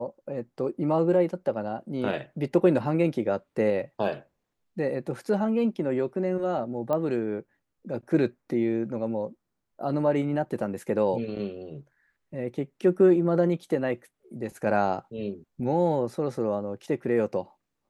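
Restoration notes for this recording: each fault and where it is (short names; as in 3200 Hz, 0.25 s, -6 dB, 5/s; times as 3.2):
6.93 pop -17 dBFS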